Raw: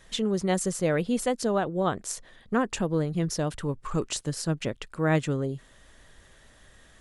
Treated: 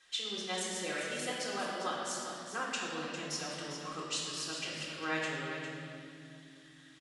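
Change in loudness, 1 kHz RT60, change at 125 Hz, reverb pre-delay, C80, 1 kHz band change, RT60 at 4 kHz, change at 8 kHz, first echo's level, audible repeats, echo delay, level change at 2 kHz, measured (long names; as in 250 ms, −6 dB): −9.0 dB, 2.1 s, −19.0 dB, 3 ms, 0.0 dB, −6.5 dB, 2.1 s, −5.0 dB, −9.0 dB, 1, 402 ms, −1.5 dB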